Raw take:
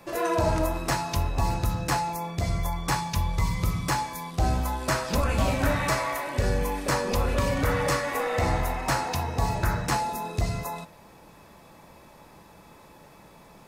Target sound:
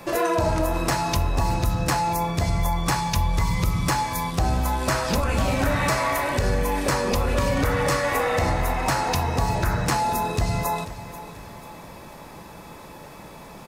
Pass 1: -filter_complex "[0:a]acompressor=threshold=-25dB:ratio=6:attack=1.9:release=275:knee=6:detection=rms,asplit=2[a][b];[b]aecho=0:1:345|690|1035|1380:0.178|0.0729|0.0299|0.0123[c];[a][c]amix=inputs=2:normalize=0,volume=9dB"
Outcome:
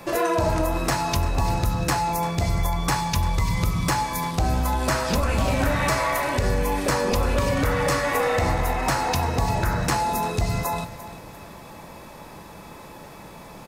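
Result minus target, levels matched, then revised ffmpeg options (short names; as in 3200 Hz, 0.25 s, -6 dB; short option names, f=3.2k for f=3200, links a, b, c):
echo 0.144 s early
-filter_complex "[0:a]acompressor=threshold=-25dB:ratio=6:attack=1.9:release=275:knee=6:detection=rms,asplit=2[a][b];[b]aecho=0:1:489|978|1467|1956:0.178|0.0729|0.0299|0.0123[c];[a][c]amix=inputs=2:normalize=0,volume=9dB"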